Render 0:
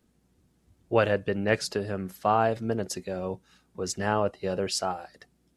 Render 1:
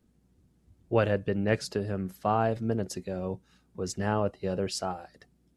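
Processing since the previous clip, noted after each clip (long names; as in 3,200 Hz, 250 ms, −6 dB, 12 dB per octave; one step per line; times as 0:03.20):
low-shelf EQ 360 Hz +8 dB
level −5 dB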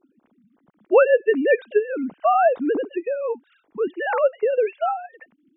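three sine waves on the formant tracks
level +9 dB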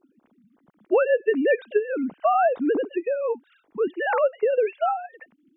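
downward compressor, threshold −16 dBFS, peak gain reduction 7 dB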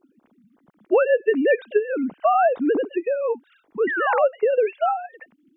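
sound drawn into the spectrogram fall, 0:03.87–0:04.25, 670–2,000 Hz −27 dBFS
level +2 dB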